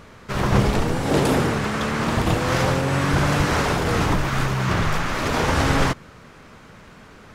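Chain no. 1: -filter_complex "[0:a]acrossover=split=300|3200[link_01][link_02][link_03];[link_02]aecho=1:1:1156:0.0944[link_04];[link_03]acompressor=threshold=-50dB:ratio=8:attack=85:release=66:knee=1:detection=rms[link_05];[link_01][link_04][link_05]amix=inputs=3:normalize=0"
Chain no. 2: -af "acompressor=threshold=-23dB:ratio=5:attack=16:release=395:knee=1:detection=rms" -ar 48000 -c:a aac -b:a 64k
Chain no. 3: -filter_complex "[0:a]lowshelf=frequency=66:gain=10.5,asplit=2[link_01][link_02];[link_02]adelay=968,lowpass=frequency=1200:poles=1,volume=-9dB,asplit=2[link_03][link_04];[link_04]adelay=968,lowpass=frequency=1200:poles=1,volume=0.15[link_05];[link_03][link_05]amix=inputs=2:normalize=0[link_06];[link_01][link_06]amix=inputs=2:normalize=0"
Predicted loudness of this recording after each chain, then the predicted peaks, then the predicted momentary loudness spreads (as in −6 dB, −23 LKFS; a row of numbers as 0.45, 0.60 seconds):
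−21.5, −27.5, −20.0 LKFS; −5.5, −13.5, −2.5 dBFS; 6, 18, 11 LU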